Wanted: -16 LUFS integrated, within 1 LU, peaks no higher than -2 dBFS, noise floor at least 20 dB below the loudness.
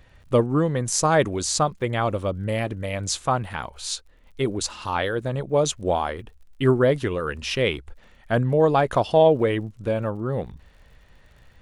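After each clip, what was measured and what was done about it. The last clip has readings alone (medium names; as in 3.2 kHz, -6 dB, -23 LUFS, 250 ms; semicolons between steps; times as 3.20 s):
tick rate 54 per s; loudness -23.5 LUFS; peak level -5.0 dBFS; loudness target -16.0 LUFS
-> de-click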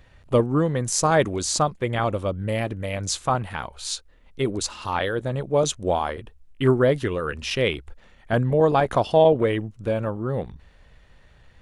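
tick rate 0.086 per s; loudness -23.5 LUFS; peak level -5.0 dBFS; loudness target -16.0 LUFS
-> trim +7.5 dB; peak limiter -2 dBFS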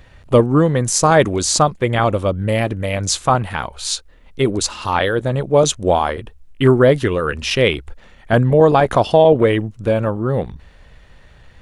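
loudness -16.5 LUFS; peak level -2.0 dBFS; noise floor -46 dBFS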